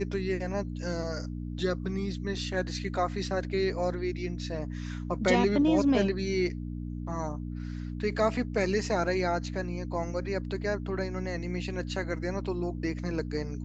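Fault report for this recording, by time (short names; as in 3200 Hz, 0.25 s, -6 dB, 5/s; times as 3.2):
hum 60 Hz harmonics 5 -36 dBFS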